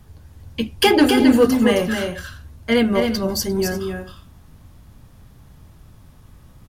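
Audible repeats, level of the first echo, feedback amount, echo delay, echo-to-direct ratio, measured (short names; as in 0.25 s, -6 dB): 2, -5.5 dB, no steady repeat, 0.266 s, -5.0 dB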